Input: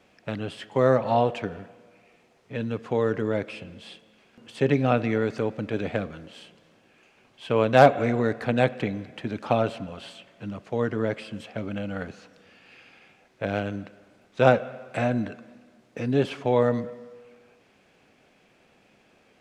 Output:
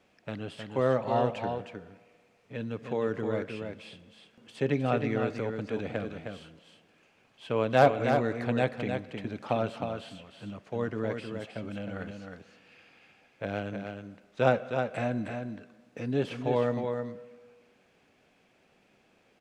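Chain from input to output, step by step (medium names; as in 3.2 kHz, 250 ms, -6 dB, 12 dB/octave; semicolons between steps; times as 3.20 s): delay 312 ms -6 dB; trim -6 dB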